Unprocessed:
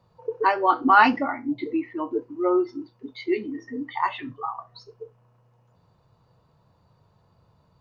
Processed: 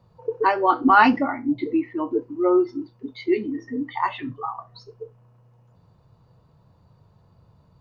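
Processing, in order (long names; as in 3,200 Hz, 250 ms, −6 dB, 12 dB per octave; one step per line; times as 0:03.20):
low-shelf EQ 350 Hz +7 dB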